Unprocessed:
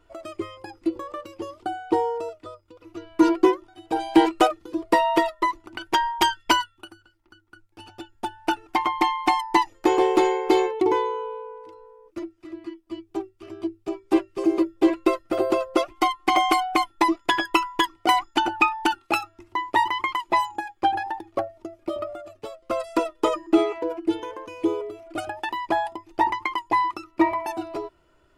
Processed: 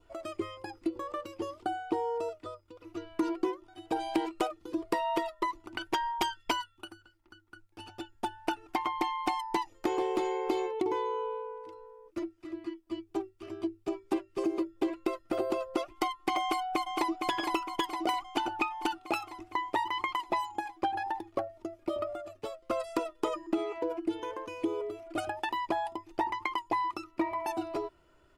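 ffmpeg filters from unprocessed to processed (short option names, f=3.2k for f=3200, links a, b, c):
-filter_complex "[0:a]asettb=1/sr,asplit=3[a][b][c];[a]atrim=end=9.184[d];[b]atrim=start=9.18:end=10.32,asetpts=PTS-STARTPTS,afade=t=in:d=0.004:c=qsin,afade=t=out:st=1.136:d=0.004:c=qsin,asoftclip=type=hard:threshold=-10.5dB[e];[c]atrim=start=10.316[f];[d][e]acrossfade=d=0.004:c1=hsin:c2=qsin[g];[g][f]acrossfade=d=0.004:c1=qsin:c2=hsin,asplit=2[h][i];[i]afade=t=in:st=16.4:d=0.01,afade=t=out:st=17.23:d=0.01,aecho=0:1:460|920|1380|1840|2300|2760|3220|3680|4140:0.375837|0.244294|0.158791|0.103214|0.0670893|0.0436081|0.0283452|0.0184244|0.0119759[j];[h][j]amix=inputs=2:normalize=0,adynamicequalizer=threshold=0.00708:dfrequency=1700:dqfactor=2.7:tfrequency=1700:tqfactor=2.7:attack=5:release=100:ratio=0.375:range=2.5:mode=cutabove:tftype=bell,acompressor=threshold=-25dB:ratio=6,volume=-2.5dB"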